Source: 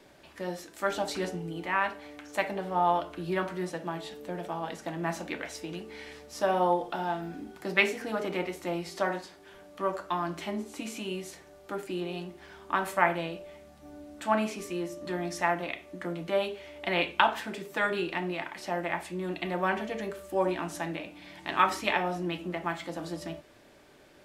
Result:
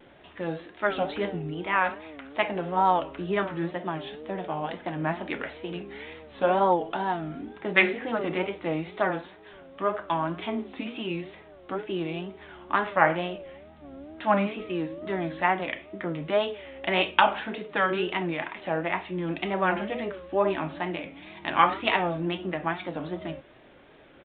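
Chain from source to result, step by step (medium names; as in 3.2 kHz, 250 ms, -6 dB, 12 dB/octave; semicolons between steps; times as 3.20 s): wow and flutter 150 cents; resampled via 8 kHz; trim +3.5 dB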